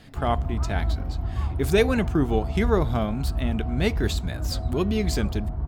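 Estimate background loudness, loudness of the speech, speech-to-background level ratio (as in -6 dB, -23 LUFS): -29.5 LUFS, -26.5 LUFS, 3.0 dB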